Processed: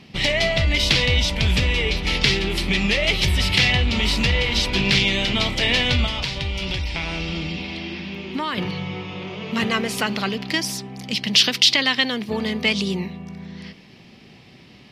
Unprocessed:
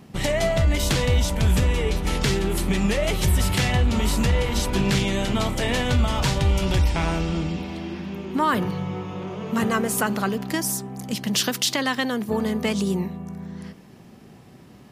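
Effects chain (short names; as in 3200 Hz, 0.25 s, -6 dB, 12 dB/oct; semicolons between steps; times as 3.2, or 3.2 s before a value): band shelf 3300 Hz +12.5 dB; 6.06–8.58 compressor 6:1, threshold -21 dBFS, peak gain reduction 9 dB; high shelf 9200 Hz -11.5 dB; gain -1 dB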